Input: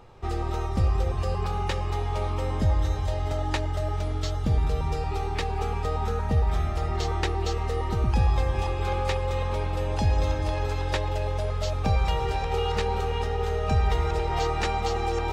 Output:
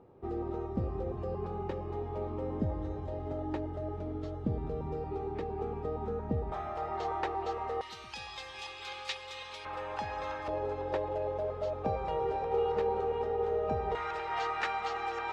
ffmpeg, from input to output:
-af "asetnsamples=n=441:p=0,asendcmd='6.52 bandpass f 800;7.81 bandpass f 3800;9.65 bandpass f 1300;10.48 bandpass f 500;13.95 bandpass f 1500',bandpass=f=310:t=q:w=1.2:csg=0"

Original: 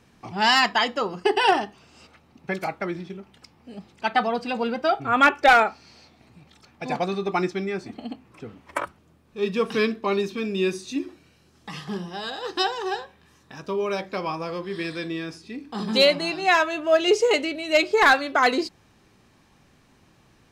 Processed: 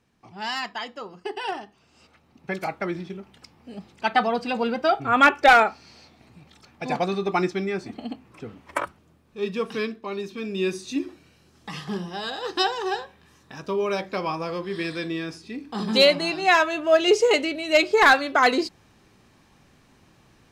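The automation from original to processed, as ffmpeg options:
-af "volume=10.5dB,afade=t=in:st=1.64:d=1.3:silence=0.251189,afade=t=out:st=8.79:d=1.31:silence=0.334965,afade=t=in:st=10.1:d=0.87:silence=0.334965"

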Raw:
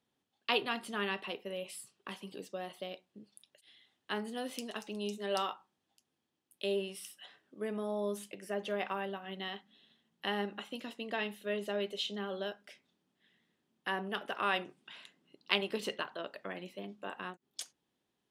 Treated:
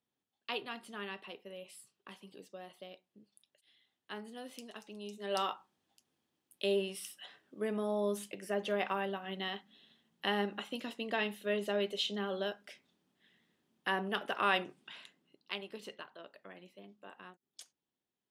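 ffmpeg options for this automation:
-af "volume=2dB,afade=t=in:st=5.12:d=0.4:silence=0.334965,afade=t=out:st=14.82:d=0.7:silence=0.251189"

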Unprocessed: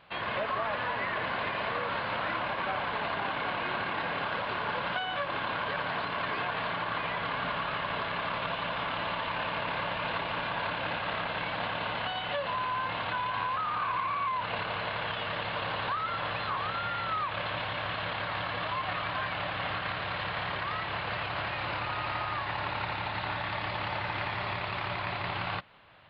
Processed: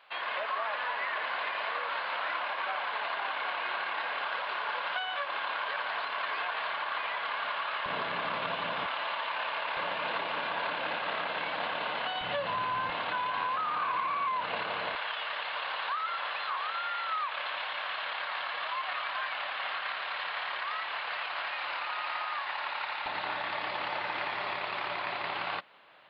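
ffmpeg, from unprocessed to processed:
-af "asetnsamples=n=441:p=0,asendcmd='7.86 highpass f 190;8.86 highpass f 620;9.77 highpass f 290;12.21 highpass f 110;12.9 highpass f 240;14.95 highpass f 810;23.06 highpass f 320',highpass=700"

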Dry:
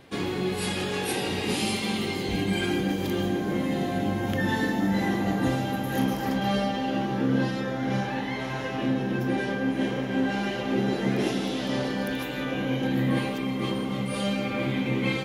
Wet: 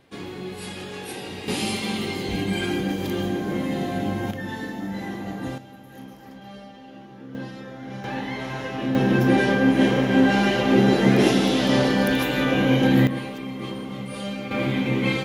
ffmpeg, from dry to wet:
-af "asetnsamples=n=441:p=0,asendcmd='1.48 volume volume 1dB;4.31 volume volume -6dB;5.58 volume volume -16dB;7.35 volume volume -8.5dB;8.04 volume volume 0.5dB;8.95 volume volume 8.5dB;13.07 volume volume -3.5dB;14.51 volume volume 3.5dB',volume=-6dB"

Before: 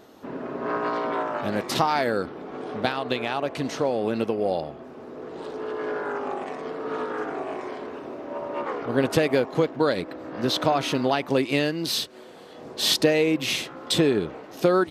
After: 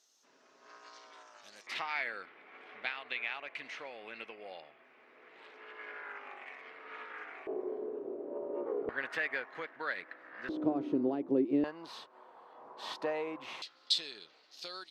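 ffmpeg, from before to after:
-af "asetnsamples=n=441:p=0,asendcmd='1.67 bandpass f 2200;7.47 bandpass f 410;8.89 bandpass f 1800;10.49 bandpass f 320;11.64 bandpass f 990;13.62 bandpass f 4400',bandpass=f=6.1k:t=q:w=3.8:csg=0"

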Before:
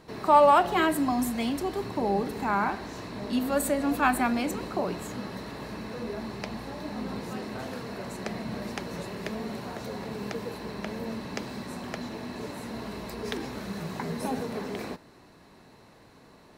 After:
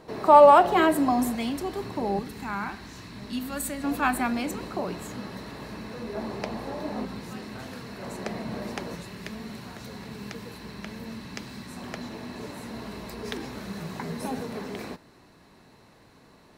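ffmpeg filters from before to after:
-af "asetnsamples=n=441:p=0,asendcmd='1.35 equalizer g -1.5;2.19 equalizer g -11.5;3.84 equalizer g -2;6.15 equalizer g 6;7.05 equalizer g -6;8.02 equalizer g 2;8.95 equalizer g -9;11.77 equalizer g -2',equalizer=f=560:t=o:w=1.9:g=6"

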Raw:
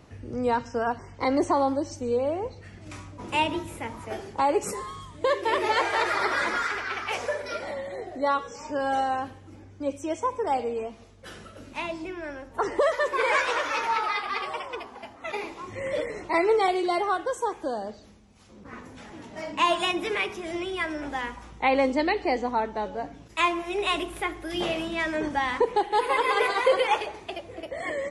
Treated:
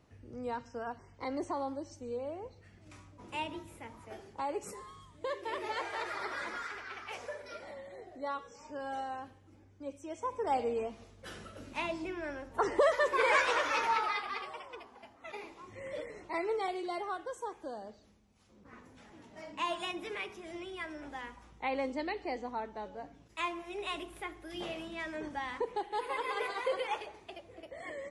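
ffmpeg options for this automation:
-af "volume=-3.5dB,afade=t=in:st=10.11:d=0.57:silence=0.334965,afade=t=out:st=13.84:d=0.69:silence=0.375837"

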